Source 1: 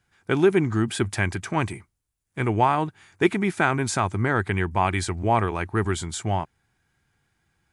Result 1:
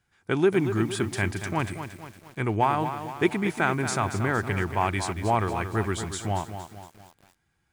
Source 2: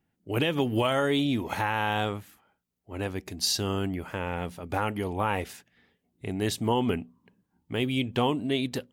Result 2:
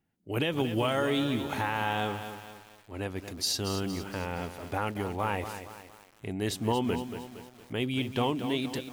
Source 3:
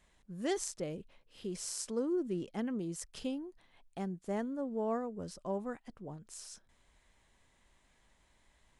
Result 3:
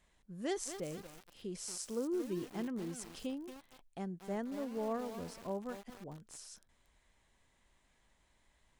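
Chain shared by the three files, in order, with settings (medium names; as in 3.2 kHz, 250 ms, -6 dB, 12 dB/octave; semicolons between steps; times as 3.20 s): bit-crushed delay 231 ms, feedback 55%, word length 7-bit, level -9 dB; trim -3 dB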